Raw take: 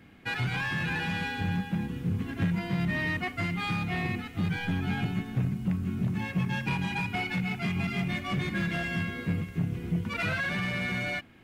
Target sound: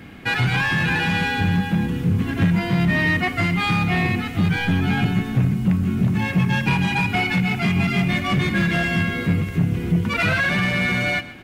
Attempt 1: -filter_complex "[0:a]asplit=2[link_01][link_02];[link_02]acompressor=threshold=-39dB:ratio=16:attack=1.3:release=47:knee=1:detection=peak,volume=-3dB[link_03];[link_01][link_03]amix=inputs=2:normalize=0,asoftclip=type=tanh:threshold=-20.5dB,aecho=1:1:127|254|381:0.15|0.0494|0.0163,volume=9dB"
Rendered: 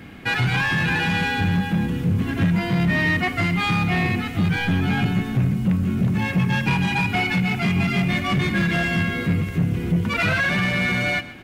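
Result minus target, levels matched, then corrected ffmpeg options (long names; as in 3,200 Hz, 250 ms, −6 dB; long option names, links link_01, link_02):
soft clipping: distortion +16 dB
-filter_complex "[0:a]asplit=2[link_01][link_02];[link_02]acompressor=threshold=-39dB:ratio=16:attack=1.3:release=47:knee=1:detection=peak,volume=-3dB[link_03];[link_01][link_03]amix=inputs=2:normalize=0,asoftclip=type=tanh:threshold=-11.5dB,aecho=1:1:127|254|381:0.15|0.0494|0.0163,volume=9dB"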